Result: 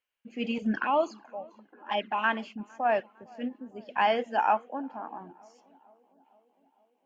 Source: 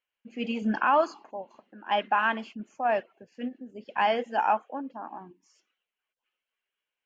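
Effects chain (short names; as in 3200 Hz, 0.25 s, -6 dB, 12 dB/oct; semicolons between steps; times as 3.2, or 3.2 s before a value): 0.58–2.24 envelope flanger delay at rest 2.7 ms, full sweep at -20.5 dBFS; on a send: tape echo 0.456 s, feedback 73%, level -23 dB, low-pass 1100 Hz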